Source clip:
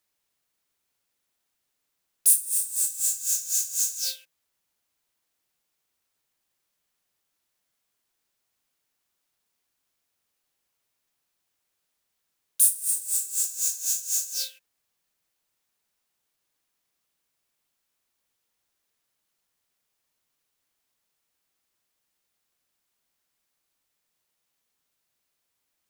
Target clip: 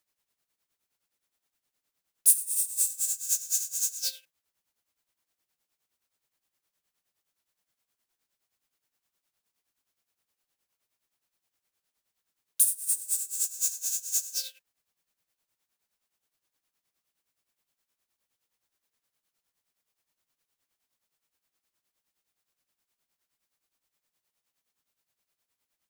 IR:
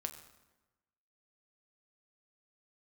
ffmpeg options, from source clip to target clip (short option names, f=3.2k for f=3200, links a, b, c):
-filter_complex "[0:a]tremolo=f=9.6:d=0.72,asettb=1/sr,asplit=3[a][b][c];[a]atrim=end=2.354[d];[b]atrim=start=2.35:end=2.9,asetpts=PTS-STARTPTS,afade=t=in:d=0.004:c=qsin,afade=t=out:st=0.546:d=0.004:c=qsin,asplit=2[e][f];[f]adelay=29,volume=-5dB[g];[e][g]amix=inputs=2:normalize=0,atrim=end_sample=24255[h];[c]atrim=start=2.896[i];[d][h]acrossfade=d=0.004:c1=hsin:c2=qsin[j];[j][i]acrossfade=d=0.004:c1=qsin:c2=hsin"